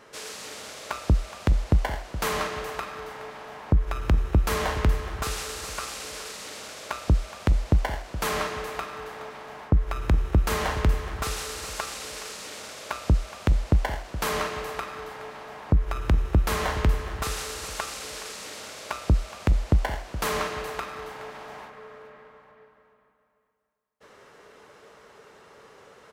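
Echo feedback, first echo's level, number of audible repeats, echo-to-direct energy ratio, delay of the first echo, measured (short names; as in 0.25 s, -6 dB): 33%, -13.5 dB, 3, -13.0 dB, 0.42 s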